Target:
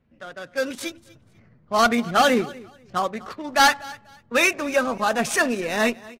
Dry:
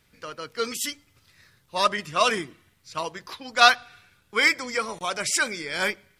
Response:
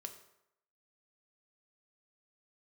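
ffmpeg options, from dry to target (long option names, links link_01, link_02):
-filter_complex "[0:a]equalizer=frequency=200:width=6.3:gain=8,acrossover=split=1200[link_01][link_02];[link_01]dynaudnorm=framelen=360:gausssize=5:maxgain=11dB[link_03];[link_03][link_02]amix=inputs=2:normalize=0,asetrate=50951,aresample=44100,atempo=0.865537,adynamicsmooth=sensitivity=6.5:basefreq=1200,asoftclip=type=hard:threshold=-11.5dB,aecho=1:1:244|488:0.0891|0.0196" -ar 48000 -c:a libvorbis -b:a 48k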